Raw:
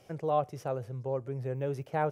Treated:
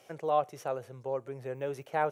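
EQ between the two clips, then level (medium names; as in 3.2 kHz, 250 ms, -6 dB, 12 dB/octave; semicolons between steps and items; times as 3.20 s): high-pass 610 Hz 6 dB/octave; band-stop 5 kHz, Q 8.4; +3.5 dB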